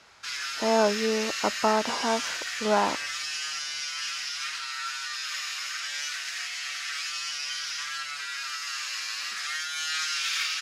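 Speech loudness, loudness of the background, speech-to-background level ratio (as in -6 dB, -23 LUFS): -27.0 LUFS, -30.5 LUFS, 3.5 dB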